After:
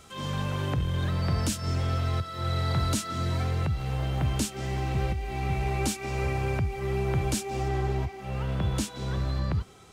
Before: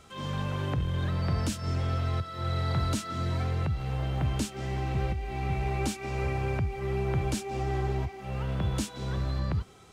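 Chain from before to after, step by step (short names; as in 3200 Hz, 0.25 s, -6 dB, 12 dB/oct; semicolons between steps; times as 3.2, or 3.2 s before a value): high shelf 5400 Hz +7 dB, from 7.68 s +2 dB; gain +1.5 dB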